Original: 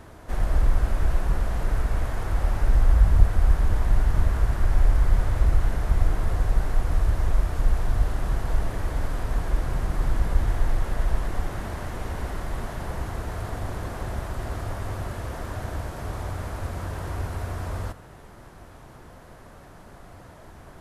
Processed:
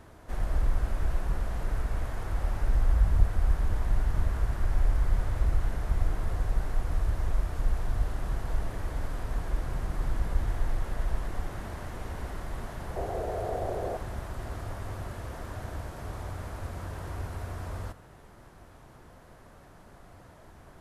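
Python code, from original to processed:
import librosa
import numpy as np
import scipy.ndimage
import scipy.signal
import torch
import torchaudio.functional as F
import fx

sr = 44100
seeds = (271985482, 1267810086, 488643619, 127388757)

y = fx.band_shelf(x, sr, hz=530.0, db=13.5, octaves=1.3, at=(12.96, 13.97))
y = y * 10.0 ** (-6.0 / 20.0)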